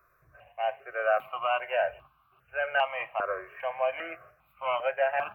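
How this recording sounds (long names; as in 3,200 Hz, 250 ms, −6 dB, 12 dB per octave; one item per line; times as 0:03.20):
notches that jump at a steady rate 2.5 Hz 820–1,900 Hz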